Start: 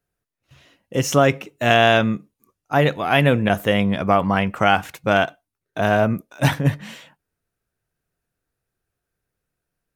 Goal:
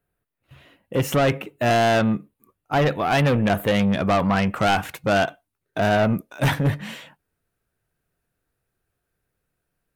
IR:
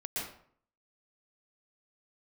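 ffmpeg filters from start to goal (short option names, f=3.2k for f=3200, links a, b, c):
-af "asetnsamples=n=441:p=0,asendcmd='3.74 equalizer g -4.5',equalizer=f=5.9k:t=o:w=0.87:g=-15,asoftclip=type=tanh:threshold=-17.5dB,volume=3dB"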